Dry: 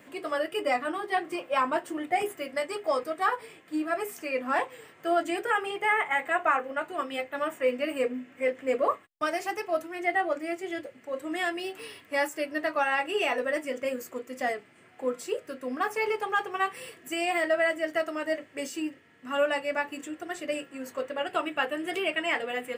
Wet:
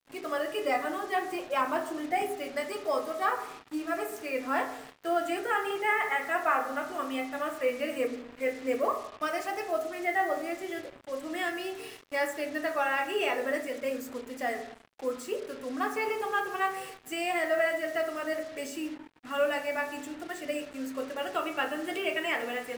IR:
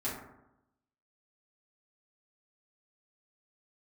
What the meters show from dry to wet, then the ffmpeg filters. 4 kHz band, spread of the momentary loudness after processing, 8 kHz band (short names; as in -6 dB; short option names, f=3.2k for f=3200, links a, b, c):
-2.5 dB, 9 LU, -0.5 dB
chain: -filter_complex "[0:a]asplit=2[a][b];[1:a]atrim=start_sample=2205,lowpass=4.3k,adelay=26[c];[b][c]afir=irnorm=-1:irlink=0,volume=-10.5dB[d];[a][d]amix=inputs=2:normalize=0,acrusher=bits=6:mix=0:aa=0.5,volume=-3dB"